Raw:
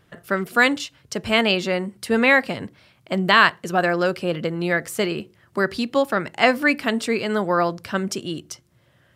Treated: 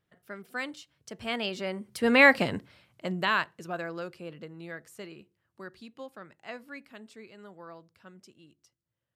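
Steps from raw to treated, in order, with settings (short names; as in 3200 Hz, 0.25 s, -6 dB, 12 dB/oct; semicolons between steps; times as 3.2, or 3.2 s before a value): Doppler pass-by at 2.4, 13 m/s, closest 3 m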